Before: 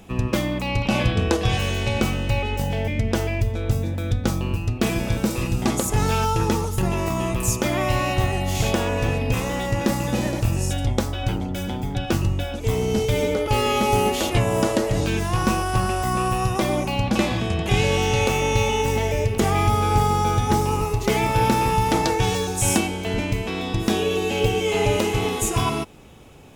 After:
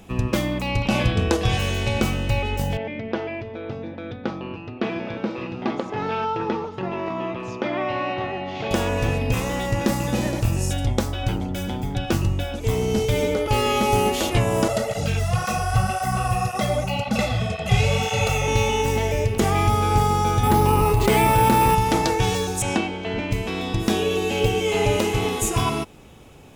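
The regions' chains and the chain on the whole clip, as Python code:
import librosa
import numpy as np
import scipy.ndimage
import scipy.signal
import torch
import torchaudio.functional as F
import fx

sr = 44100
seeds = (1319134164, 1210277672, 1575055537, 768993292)

y = fx.chain(x, sr, fx.bandpass_edges(low_hz=250.0, high_hz=5500.0),
    fx.air_absorb(metres=270.0), at=(2.77, 8.71))
y = fx.chain(y, sr, fx.comb(ms=1.5, depth=0.82),
    fx.flanger_cancel(hz=1.9, depth_ms=5.9), at=(14.68, 18.48))
y = fx.chain(y, sr, fx.peak_eq(hz=940.0, db=3.5, octaves=0.25),
    fx.resample_bad(factor=4, down='filtered', up='hold'),
    fx.env_flatten(amount_pct=70), at=(20.43, 21.75))
y = fx.chain(y, sr, fx.lowpass(hz=3600.0, slope=12),
    fx.low_shelf(hz=130.0, db=-9.0), at=(22.62, 23.31))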